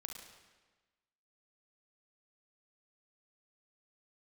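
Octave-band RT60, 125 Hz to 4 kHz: 1.3 s, 1.3 s, 1.3 s, 1.3 s, 1.3 s, 1.1 s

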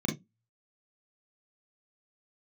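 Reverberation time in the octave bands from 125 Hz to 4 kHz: 0.25 s, 0.30 s, 0.20 s, 0.10 s, 0.15 s, 0.15 s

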